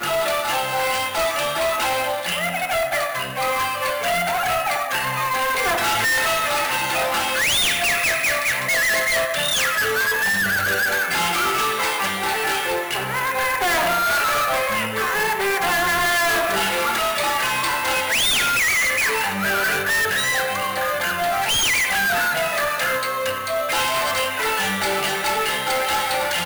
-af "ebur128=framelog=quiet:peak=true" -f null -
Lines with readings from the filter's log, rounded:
Integrated loudness:
  I:         -19.5 LUFS
  Threshold: -29.5 LUFS
Loudness range:
  LRA:         3.1 LU
  Threshold: -39.4 LUFS
  LRA low:   -21.3 LUFS
  LRA high:  -18.2 LUFS
True peak:
  Peak:      -14.5 dBFS